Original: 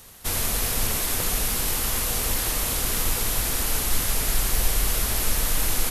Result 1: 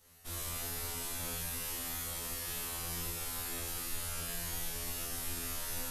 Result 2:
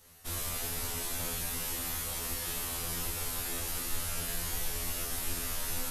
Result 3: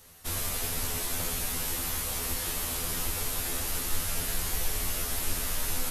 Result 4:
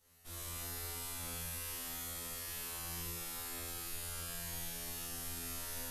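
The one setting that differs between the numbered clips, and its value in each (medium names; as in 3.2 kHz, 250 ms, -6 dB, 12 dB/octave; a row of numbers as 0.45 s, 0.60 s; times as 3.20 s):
feedback comb, decay: 0.89 s, 0.41 s, 0.18 s, 2.1 s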